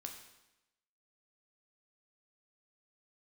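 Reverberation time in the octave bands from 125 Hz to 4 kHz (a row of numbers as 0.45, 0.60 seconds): 0.95, 1.0, 0.95, 0.95, 0.95, 0.90 seconds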